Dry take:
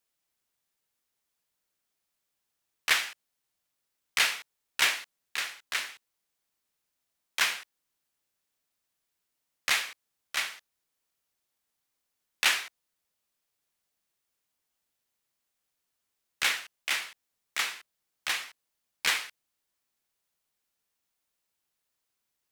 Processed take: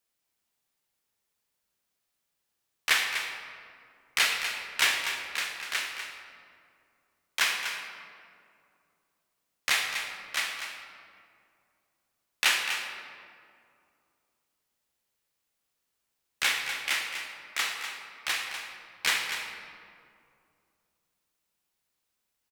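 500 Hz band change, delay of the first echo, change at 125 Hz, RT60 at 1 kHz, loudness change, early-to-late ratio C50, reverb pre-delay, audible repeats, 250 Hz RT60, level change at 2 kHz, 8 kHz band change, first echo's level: +2.0 dB, 246 ms, no reading, 2.2 s, +0.5 dB, 3.5 dB, 22 ms, 1, 2.9 s, +2.0 dB, +1.0 dB, -9.0 dB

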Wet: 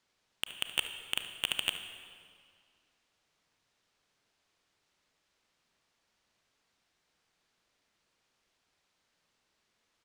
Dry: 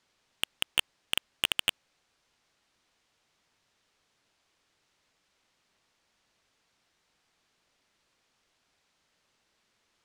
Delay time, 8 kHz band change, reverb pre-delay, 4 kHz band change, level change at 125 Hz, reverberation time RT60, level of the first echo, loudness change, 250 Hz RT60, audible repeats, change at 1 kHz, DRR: 72 ms, -4.0 dB, 32 ms, -3.5 dB, -3.5 dB, 2.1 s, -15.0 dB, -4.0 dB, 2.2 s, 1, -3.5 dB, 7.0 dB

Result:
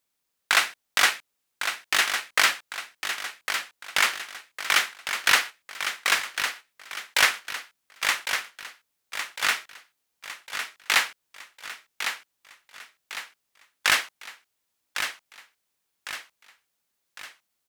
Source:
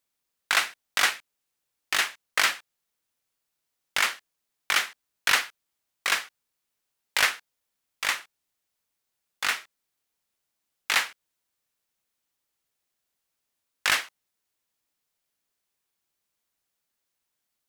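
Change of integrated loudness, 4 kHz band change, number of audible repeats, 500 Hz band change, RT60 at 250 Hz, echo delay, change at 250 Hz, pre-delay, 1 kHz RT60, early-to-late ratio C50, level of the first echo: +1.0 dB, +3.5 dB, 5, +3.0 dB, no reverb, 1105 ms, +3.0 dB, no reverb, no reverb, no reverb, -8.0 dB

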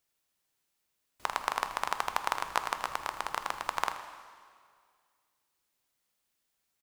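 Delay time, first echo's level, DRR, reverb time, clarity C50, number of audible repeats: 80 ms, -14.0 dB, 7.0 dB, 2.0 s, 8.5 dB, 2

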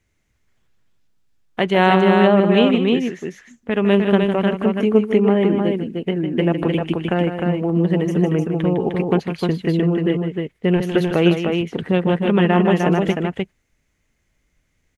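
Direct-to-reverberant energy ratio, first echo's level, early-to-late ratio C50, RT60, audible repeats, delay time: no reverb, -8.5 dB, no reverb, no reverb, 2, 155 ms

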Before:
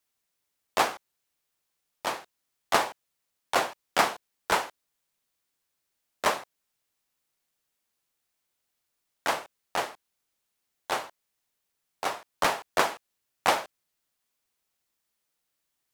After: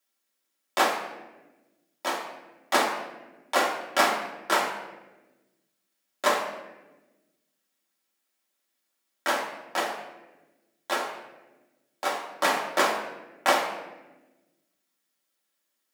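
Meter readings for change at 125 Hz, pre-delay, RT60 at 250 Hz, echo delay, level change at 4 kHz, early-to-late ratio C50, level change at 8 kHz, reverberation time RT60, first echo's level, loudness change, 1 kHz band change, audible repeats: no reading, 3 ms, 1.7 s, no echo, +2.0 dB, 5.5 dB, +1.5 dB, 1.1 s, no echo, +2.0 dB, +2.0 dB, no echo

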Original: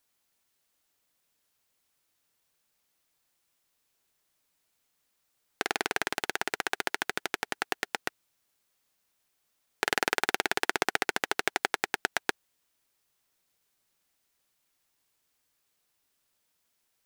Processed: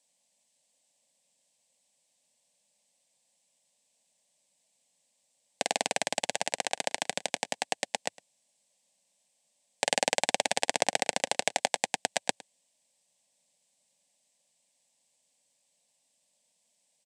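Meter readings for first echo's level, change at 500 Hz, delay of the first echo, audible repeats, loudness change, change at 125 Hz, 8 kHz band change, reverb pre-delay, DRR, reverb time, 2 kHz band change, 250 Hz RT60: -21.0 dB, +3.0 dB, 109 ms, 1, +0.5 dB, 0.0 dB, +7.0 dB, no reverb, no reverb, no reverb, -4.0 dB, no reverb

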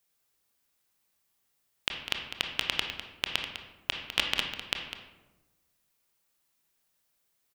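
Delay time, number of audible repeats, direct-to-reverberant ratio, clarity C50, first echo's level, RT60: 202 ms, 1, 2.5 dB, 4.5 dB, -11.0 dB, 1.1 s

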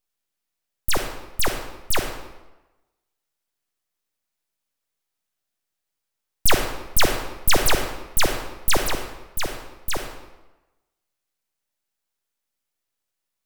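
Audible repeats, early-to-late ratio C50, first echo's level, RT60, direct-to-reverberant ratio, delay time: no echo, 5.5 dB, no echo, 1.1 s, 4.0 dB, no echo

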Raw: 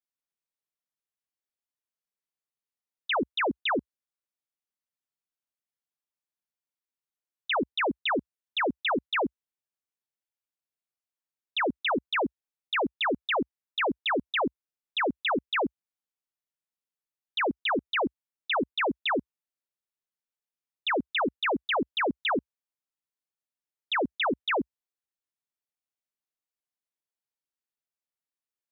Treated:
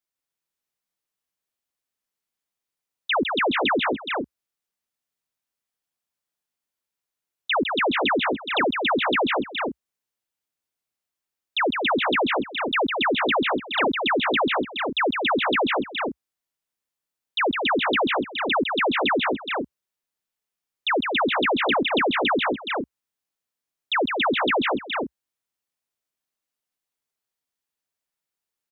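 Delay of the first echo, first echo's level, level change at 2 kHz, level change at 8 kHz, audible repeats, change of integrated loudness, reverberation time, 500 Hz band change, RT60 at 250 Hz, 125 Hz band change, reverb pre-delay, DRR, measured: 156 ms, -5.0 dB, +7.0 dB, no reading, 4, +6.0 dB, no reverb, +7.0 dB, no reverb, +7.0 dB, no reverb, no reverb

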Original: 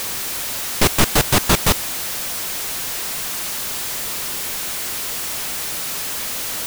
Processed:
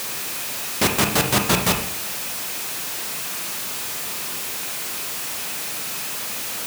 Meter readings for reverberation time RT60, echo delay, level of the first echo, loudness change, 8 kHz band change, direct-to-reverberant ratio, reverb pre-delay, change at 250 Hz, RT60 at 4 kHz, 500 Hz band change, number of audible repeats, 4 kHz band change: 0.65 s, no echo, no echo, -2.5 dB, -3.0 dB, 3.5 dB, 26 ms, -1.5 dB, 0.45 s, -2.0 dB, no echo, -2.5 dB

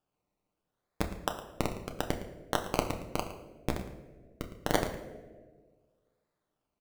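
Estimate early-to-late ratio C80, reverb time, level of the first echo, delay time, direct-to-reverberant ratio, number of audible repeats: 10.0 dB, 1.5 s, -15.0 dB, 111 ms, 3.5 dB, 1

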